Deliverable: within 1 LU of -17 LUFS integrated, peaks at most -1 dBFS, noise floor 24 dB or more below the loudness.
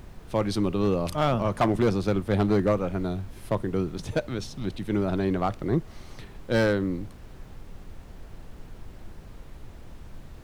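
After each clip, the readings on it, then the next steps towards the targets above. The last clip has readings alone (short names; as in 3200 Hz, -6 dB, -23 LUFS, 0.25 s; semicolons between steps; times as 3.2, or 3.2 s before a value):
clipped 0.6%; flat tops at -15.5 dBFS; noise floor -46 dBFS; noise floor target -51 dBFS; loudness -27.0 LUFS; peak -15.5 dBFS; loudness target -17.0 LUFS
-> clip repair -15.5 dBFS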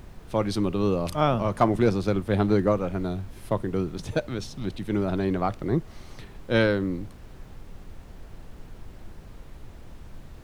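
clipped 0.0%; noise floor -46 dBFS; noise floor target -50 dBFS
-> noise print and reduce 6 dB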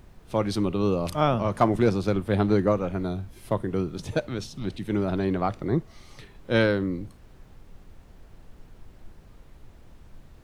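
noise floor -52 dBFS; loudness -26.0 LUFS; peak -6.5 dBFS; loudness target -17.0 LUFS
-> gain +9 dB; limiter -1 dBFS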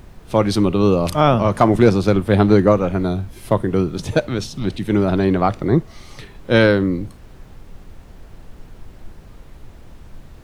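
loudness -17.5 LUFS; peak -1.0 dBFS; noise floor -43 dBFS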